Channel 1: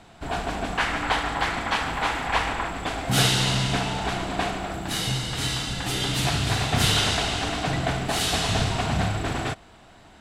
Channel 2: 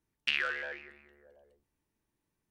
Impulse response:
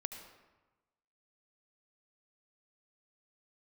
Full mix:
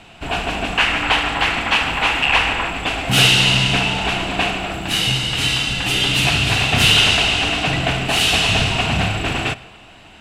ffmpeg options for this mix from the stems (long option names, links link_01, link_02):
-filter_complex "[0:a]volume=-4dB,asplit=2[link_01][link_02];[link_02]volume=-9.5dB[link_03];[1:a]adelay=1950,volume=-5dB[link_04];[2:a]atrim=start_sample=2205[link_05];[link_03][link_05]afir=irnorm=-1:irlink=0[link_06];[link_01][link_04][link_06]amix=inputs=3:normalize=0,equalizer=frequency=2700:width=3.1:gain=13,acontrast=72"